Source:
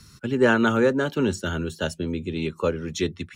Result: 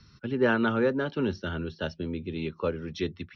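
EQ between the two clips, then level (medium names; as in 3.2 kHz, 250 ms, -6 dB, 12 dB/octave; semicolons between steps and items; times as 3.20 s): steep low-pass 5.8 kHz 96 dB/octave; distance through air 66 m; -5.0 dB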